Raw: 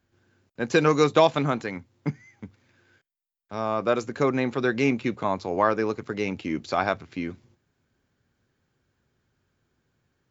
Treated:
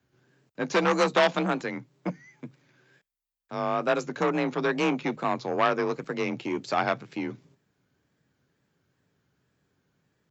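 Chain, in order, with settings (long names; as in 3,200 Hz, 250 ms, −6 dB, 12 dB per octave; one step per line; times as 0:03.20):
tape wow and flutter 79 cents
frequency shifter +33 Hz
saturating transformer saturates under 1,700 Hz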